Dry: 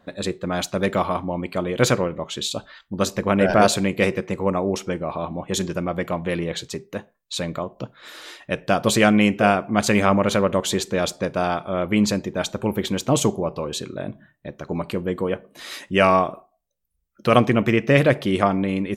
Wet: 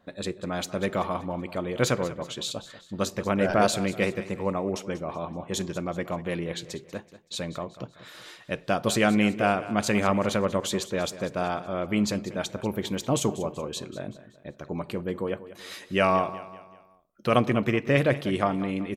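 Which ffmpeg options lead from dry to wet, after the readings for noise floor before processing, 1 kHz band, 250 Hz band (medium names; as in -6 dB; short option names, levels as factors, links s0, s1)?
-69 dBFS, -6.0 dB, -6.0 dB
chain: -af "aecho=1:1:190|380|570|760:0.168|0.0739|0.0325|0.0143,volume=0.501"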